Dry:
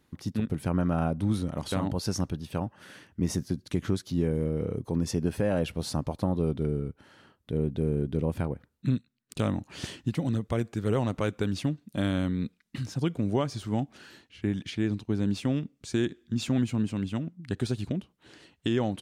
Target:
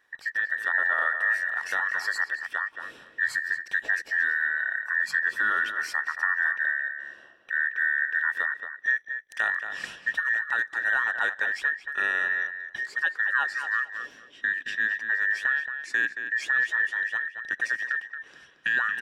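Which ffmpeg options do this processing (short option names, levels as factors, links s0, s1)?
-filter_complex "[0:a]afftfilt=real='real(if(between(b,1,1012),(2*floor((b-1)/92)+1)*92-b,b),0)':imag='imag(if(between(b,1,1012),(2*floor((b-1)/92)+1)*92-b,b),0)*if(between(b,1,1012),-1,1)':win_size=2048:overlap=0.75,lowpass=f=3800:p=1,lowshelf=f=230:g=-11.5,asplit=2[s0][s1];[s1]adelay=225,lowpass=f=2800:p=1,volume=0.422,asplit=2[s2][s3];[s3]adelay=225,lowpass=f=2800:p=1,volume=0.19,asplit=2[s4][s5];[s5]adelay=225,lowpass=f=2800:p=1,volume=0.19[s6];[s0][s2][s4][s6]amix=inputs=4:normalize=0,volume=1.26"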